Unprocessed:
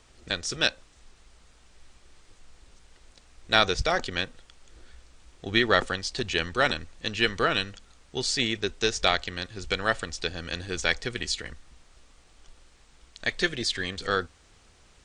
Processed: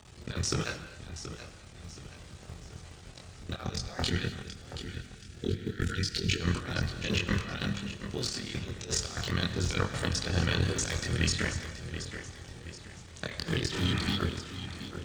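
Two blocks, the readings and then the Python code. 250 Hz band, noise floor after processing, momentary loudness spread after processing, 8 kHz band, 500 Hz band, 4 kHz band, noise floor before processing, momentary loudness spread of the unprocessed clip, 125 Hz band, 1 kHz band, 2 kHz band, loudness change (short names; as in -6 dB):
+0.5 dB, -50 dBFS, 18 LU, +0.5 dB, -8.0 dB, -6.5 dB, -58 dBFS, 10 LU, +7.0 dB, -10.5 dB, -8.5 dB, -5.5 dB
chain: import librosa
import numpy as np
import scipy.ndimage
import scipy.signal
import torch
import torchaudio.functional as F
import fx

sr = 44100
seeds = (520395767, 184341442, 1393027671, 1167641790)

p1 = fx.cycle_switch(x, sr, every=3, mode='muted')
p2 = fx.spec_repair(p1, sr, seeds[0], start_s=13.71, length_s=0.44, low_hz=300.0, high_hz=2700.0, source='before')
p3 = scipy.signal.sosfilt(scipy.signal.butter(2, 110.0, 'highpass', fs=sr, output='sos'), p2)
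p4 = fx.spec_box(p3, sr, start_s=4.08, length_s=2.32, low_hz=490.0, high_hz=1300.0, gain_db=-27)
p5 = fx.low_shelf(p4, sr, hz=200.0, db=10.0)
p6 = fx.over_compress(p5, sr, threshold_db=-34.0, ratio=-0.5)
p7 = p6 + fx.echo_feedback(p6, sr, ms=727, feedback_pct=43, wet_db=-11.0, dry=0)
p8 = fx.chorus_voices(p7, sr, voices=6, hz=0.29, base_ms=24, depth_ms=1.4, mix_pct=45)
p9 = fx.dynamic_eq(p8, sr, hz=1200.0, q=2.7, threshold_db=-58.0, ratio=4.0, max_db=4)
p10 = fx.rev_gated(p9, sr, seeds[1], gate_ms=280, shape='flat', drr_db=10.0)
y = F.gain(torch.from_numpy(p10), 4.0).numpy()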